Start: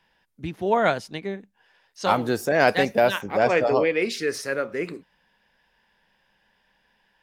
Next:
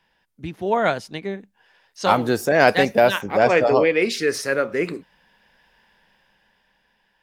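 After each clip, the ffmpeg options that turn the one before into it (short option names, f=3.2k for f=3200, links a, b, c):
-af "dynaudnorm=f=290:g=9:m=8dB"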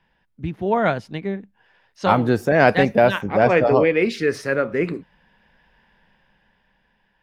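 -af "bass=f=250:g=7,treble=f=4k:g=-11"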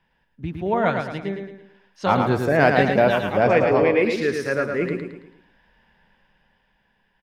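-af "aecho=1:1:110|220|330|440|550:0.562|0.231|0.0945|0.0388|0.0159,volume=-2.5dB"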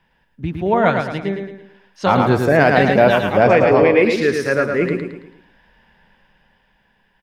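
-af "alimiter=level_in=6.5dB:limit=-1dB:release=50:level=0:latency=1,volume=-1dB"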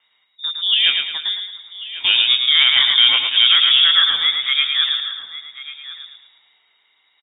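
-af "aecho=1:1:1092:0.168,lowpass=f=3.2k:t=q:w=0.5098,lowpass=f=3.2k:t=q:w=0.6013,lowpass=f=3.2k:t=q:w=0.9,lowpass=f=3.2k:t=q:w=2.563,afreqshift=-3800,volume=-1dB"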